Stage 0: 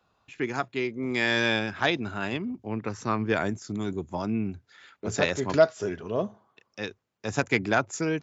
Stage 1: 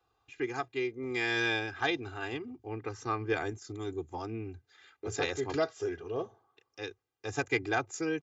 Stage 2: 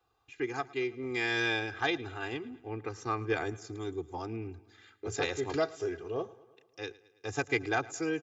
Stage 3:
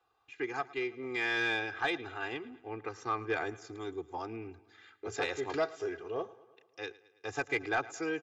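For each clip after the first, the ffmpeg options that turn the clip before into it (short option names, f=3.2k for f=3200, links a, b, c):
-af "aecho=1:1:2.5:0.99,volume=-8.5dB"
-af "aecho=1:1:110|220|330|440|550:0.0891|0.0526|0.031|0.0183|0.0108"
-filter_complex "[0:a]asplit=2[a][b];[b]highpass=f=720:p=1,volume=12dB,asoftclip=type=tanh:threshold=-14.5dB[c];[a][c]amix=inputs=2:normalize=0,lowpass=f=2.5k:p=1,volume=-6dB,volume=-4dB"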